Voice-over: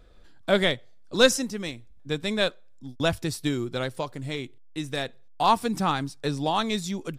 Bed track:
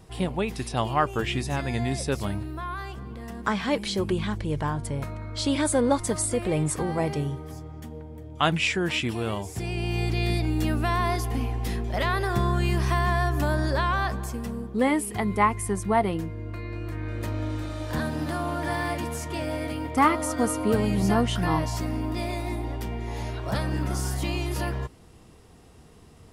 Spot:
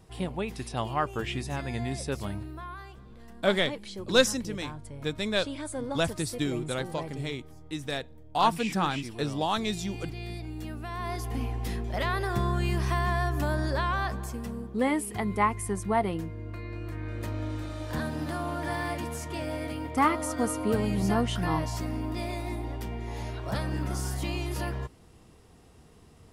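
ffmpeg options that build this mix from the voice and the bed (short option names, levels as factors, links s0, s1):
-filter_complex "[0:a]adelay=2950,volume=0.708[s0];[1:a]volume=1.58,afade=t=out:st=2.44:d=0.62:silence=0.421697,afade=t=in:st=10.9:d=0.53:silence=0.354813[s1];[s0][s1]amix=inputs=2:normalize=0"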